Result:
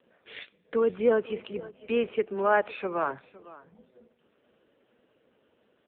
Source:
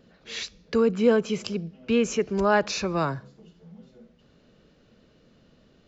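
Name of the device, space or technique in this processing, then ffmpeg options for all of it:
satellite phone: -filter_complex "[0:a]asplit=3[link_01][link_02][link_03];[link_01]afade=type=out:start_time=2.33:duration=0.02[link_04];[link_02]highpass=140,afade=type=in:start_time=2.33:duration=0.02,afade=type=out:start_time=3.1:duration=0.02[link_05];[link_03]afade=type=in:start_time=3.1:duration=0.02[link_06];[link_04][link_05][link_06]amix=inputs=3:normalize=0,highpass=360,lowpass=3200,aecho=1:1:509:0.112" -ar 8000 -c:a libopencore_amrnb -b:a 5900

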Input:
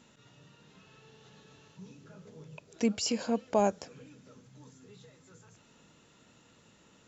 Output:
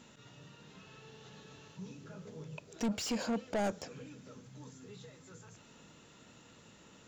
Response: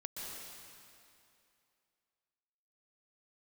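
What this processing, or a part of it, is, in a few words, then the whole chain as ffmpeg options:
saturation between pre-emphasis and de-emphasis: -af "highshelf=frequency=4000:gain=11.5,asoftclip=type=tanh:threshold=-32dB,highshelf=frequency=4000:gain=-11.5,volume=3dB"

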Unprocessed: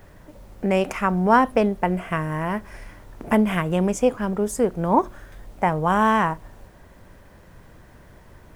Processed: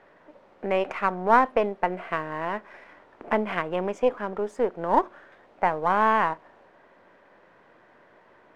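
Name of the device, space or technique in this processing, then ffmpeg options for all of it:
crystal radio: -af "highpass=390,lowpass=2500,aeval=exprs='if(lt(val(0),0),0.708*val(0),val(0))':channel_layout=same"

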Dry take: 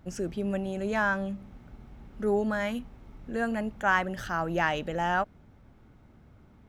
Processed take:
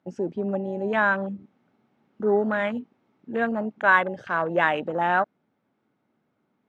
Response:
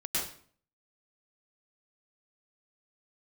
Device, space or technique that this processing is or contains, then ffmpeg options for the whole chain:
over-cleaned archive recording: -filter_complex "[0:a]highpass=200,asettb=1/sr,asplit=3[link_01][link_02][link_03];[link_01]atrim=end=3.844[link_04];[link_02]atrim=start=3.84:end=4.64,asetpts=PTS-STARTPTS,afade=type=in:duration=0.004:curve=qsin,afade=type=out:start_time=0.796:duration=0.004:curve=qsin,aecho=1:1:1.9:0.45,atrim=end_sample=35280[link_05];[link_03]atrim=start=4.636[link_06];[link_04][link_05]acrossfade=duration=0.004:curve1=hsin:curve2=qsin[link_07];[link_07][link_06]acrossfade=duration=0.004:curve1=qsin:curve2=hsin,highpass=130,lowpass=5500,afwtdn=0.0178,volume=5.5dB"

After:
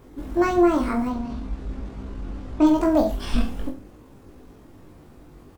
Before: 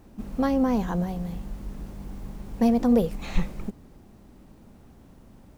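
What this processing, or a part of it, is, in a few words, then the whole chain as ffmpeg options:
chipmunk voice: -filter_complex "[0:a]asetrate=58866,aresample=44100,atempo=0.749154,asettb=1/sr,asplit=3[link_01][link_02][link_03];[link_01]atrim=end=1.084[link_04];[link_02]atrim=start=1.08:end=2.67,asetpts=PTS-STARTPTS,afade=type=in:duration=0.004:curve=qsin,afade=type=out:start_time=1.586:duration=0.004:curve=qsin,lowpass=5600[link_05];[link_03]atrim=start=2.666[link_06];[link_04][link_05]acrossfade=duration=0.004:curve1=hsin:curve2=qsin[link_07];[link_07][link_06]acrossfade=duration=0.004:curve1=qsin:curve2=hsin,aecho=1:1:20|43|69.45|99.87|134.8:0.631|0.398|0.251|0.158|0.1,volume=1.5dB"

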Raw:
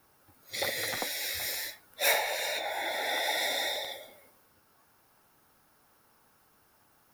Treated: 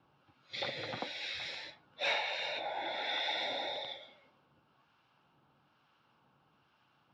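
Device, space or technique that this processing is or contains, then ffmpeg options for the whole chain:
guitar amplifier with harmonic tremolo: -filter_complex "[0:a]acrossover=split=1100[link_01][link_02];[link_01]aeval=exprs='val(0)*(1-0.5/2+0.5/2*cos(2*PI*1.1*n/s))':channel_layout=same[link_03];[link_02]aeval=exprs='val(0)*(1-0.5/2-0.5/2*cos(2*PI*1.1*n/s))':channel_layout=same[link_04];[link_03][link_04]amix=inputs=2:normalize=0,asoftclip=type=tanh:threshold=-19.5dB,highpass=85,equalizer=frequency=90:width_type=q:width=4:gain=-4,equalizer=frequency=140:width_type=q:width=4:gain=7,equalizer=frequency=430:width_type=q:width=4:gain=-5,equalizer=frequency=650:width_type=q:width=4:gain=-3,equalizer=frequency=1900:width_type=q:width=4:gain=-8,equalizer=frequency=2900:width_type=q:width=4:gain=6,lowpass=frequency=3900:width=0.5412,lowpass=frequency=3900:width=1.3066"

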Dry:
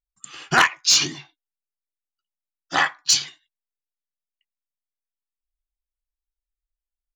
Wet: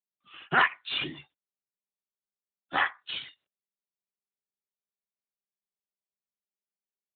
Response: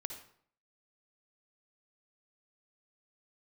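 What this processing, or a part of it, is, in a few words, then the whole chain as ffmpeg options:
mobile call with aggressive noise cancelling: -af "highpass=frequency=130:poles=1,afftdn=noise_reduction=32:noise_floor=-46,volume=-5dB" -ar 8000 -c:a libopencore_amrnb -b:a 12200

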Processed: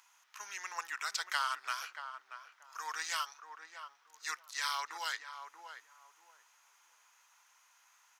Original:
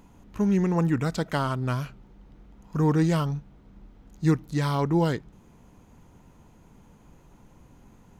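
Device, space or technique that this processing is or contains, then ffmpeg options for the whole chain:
headphones lying on a table: -filter_complex "[0:a]asettb=1/sr,asplit=3[link_01][link_02][link_03];[link_01]atrim=end=1.564[link_04];[link_02]atrim=start=1.56:end=2.92,asetpts=PTS-STARTPTS,afade=type=in:duration=0.004:curve=qsin,afade=type=out:start_time=1.356:duration=0.004:curve=qsin,highpass=frequency=290:width=0.5412,highpass=frequency=290:width=1.3066[link_05];[link_03]atrim=start=2.916[link_06];[link_04][link_05]acrossfade=duration=0.004:curve1=hsin:curve2=qsin[link_07];[link_07][link_06]acrossfade=duration=0.004:curve1=qsin:curve2=hsin,highpass=frequency=1200:width=0.5412,highpass=frequency=1200:width=1.3066,equalizer=frequency=5600:width_type=o:width=0.44:gain=6.5,asplit=2[link_08][link_09];[link_09]adelay=632,lowpass=frequency=950:poles=1,volume=-6dB,asplit=2[link_10][link_11];[link_11]adelay=632,lowpass=frequency=950:poles=1,volume=0.27,asplit=2[link_12][link_13];[link_13]adelay=632,lowpass=frequency=950:poles=1,volume=0.27[link_14];[link_08][link_10][link_12][link_14]amix=inputs=4:normalize=0"

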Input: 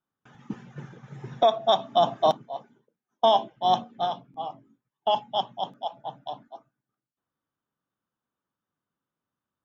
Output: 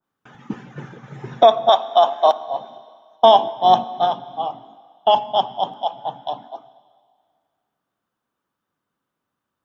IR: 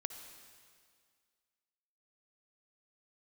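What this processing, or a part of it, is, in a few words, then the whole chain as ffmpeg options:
filtered reverb send: -filter_complex "[0:a]asettb=1/sr,asplit=3[link_01][link_02][link_03];[link_01]atrim=end=1.694[link_04];[link_02]atrim=start=1.69:end=2.48,asetpts=PTS-STARTPTS,afade=type=in:duration=0.004:curve=qsin,afade=type=out:start_time=0.786:duration=0.004:curve=qsin,highpass=590[link_05];[link_03]atrim=start=2.476[link_06];[link_04][link_05]acrossfade=duration=0.004:curve1=hsin:curve2=qsin[link_07];[link_07][link_06]acrossfade=duration=0.004:curve1=qsin:curve2=hsin,asplit=2[link_08][link_09];[link_09]highpass=220,lowpass=4700[link_10];[1:a]atrim=start_sample=2205[link_11];[link_10][link_11]afir=irnorm=-1:irlink=0,volume=-4.5dB[link_12];[link_08][link_12]amix=inputs=2:normalize=0,adynamicequalizer=threshold=0.02:dfrequency=1600:dqfactor=0.7:tfrequency=1600:tqfactor=0.7:attack=5:release=100:ratio=0.375:range=3:mode=cutabove:tftype=highshelf,volume=5.5dB"

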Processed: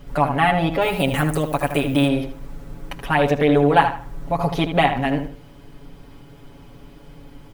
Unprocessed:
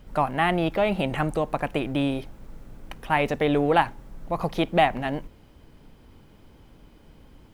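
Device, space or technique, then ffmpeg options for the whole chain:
parallel compression: -filter_complex "[0:a]asettb=1/sr,asplit=3[link_01][link_02][link_03];[link_01]atrim=end=0.814[link_04];[link_02]atrim=start=0.81:end=2.08,asetpts=PTS-STARTPTS,afade=type=in:duration=0.004:curve=qsin,afade=type=out:start_time=1.266:duration=0.004:curve=qsin,aemphasis=mode=production:type=50fm[link_05];[link_03]atrim=start=2.076[link_06];[link_04][link_05]acrossfade=duration=0.004:curve1=hsin:curve2=qsin[link_07];[link_07][link_06]acrossfade=duration=0.004:curve1=qsin:curve2=hsin,asplit=2[link_08][link_09];[link_09]acompressor=threshold=-33dB:ratio=6,volume=-2dB[link_10];[link_08][link_10]amix=inputs=2:normalize=0,aecho=1:1:7.1:0.96,asplit=2[link_11][link_12];[link_12]adelay=77,lowpass=frequency=3400:poles=1,volume=-8dB,asplit=2[link_13][link_14];[link_14]adelay=77,lowpass=frequency=3400:poles=1,volume=0.3,asplit=2[link_15][link_16];[link_16]adelay=77,lowpass=frequency=3400:poles=1,volume=0.3,asplit=2[link_17][link_18];[link_18]adelay=77,lowpass=frequency=3400:poles=1,volume=0.3[link_19];[link_11][link_13][link_15][link_17][link_19]amix=inputs=5:normalize=0"

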